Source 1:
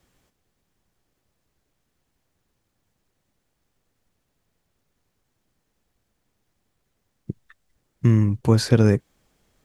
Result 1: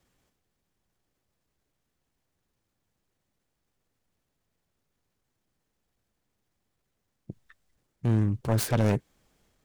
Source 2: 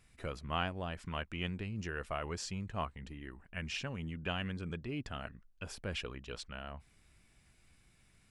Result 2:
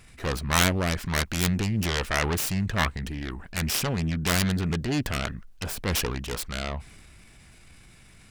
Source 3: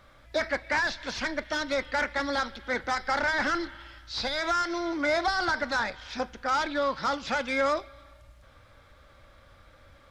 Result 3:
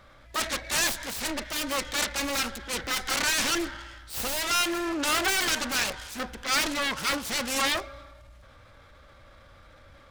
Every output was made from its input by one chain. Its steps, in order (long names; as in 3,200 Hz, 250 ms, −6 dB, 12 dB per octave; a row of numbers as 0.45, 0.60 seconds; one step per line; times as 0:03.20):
phase distortion by the signal itself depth 0.82 ms
transient designer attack −4 dB, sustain +4 dB
loudness normalisation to −27 LKFS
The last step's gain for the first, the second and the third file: −6.0, +14.5, +2.5 decibels